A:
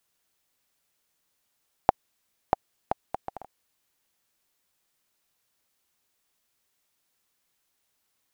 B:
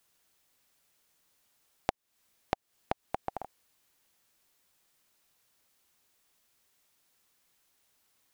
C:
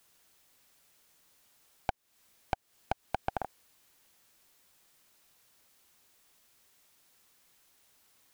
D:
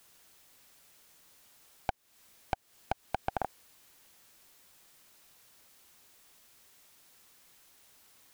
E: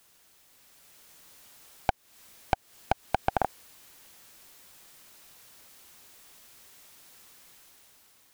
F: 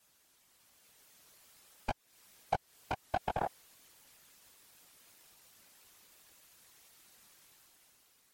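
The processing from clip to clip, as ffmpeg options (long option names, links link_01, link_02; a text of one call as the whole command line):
ffmpeg -i in.wav -af "acompressor=threshold=-32dB:ratio=6,volume=3.5dB" out.wav
ffmpeg -i in.wav -af "aeval=exprs='(tanh(28.2*val(0)+0.75)-tanh(0.75))/28.2':channel_layout=same,volume=10dB" out.wav
ffmpeg -i in.wav -af "alimiter=limit=-20.5dB:level=0:latency=1:release=38,volume=5dB" out.wav
ffmpeg -i in.wav -af "dynaudnorm=framelen=240:gausssize=7:maxgain=7dB" out.wav
ffmpeg -i in.wav -af "flanger=delay=16:depth=3.8:speed=0.49,afftfilt=real='hypot(re,im)*cos(2*PI*random(0))':imag='hypot(re,im)*sin(2*PI*random(1))':win_size=512:overlap=0.75,volume=2.5dB" -ar 44100 -c:a libmp3lame -b:a 64k out.mp3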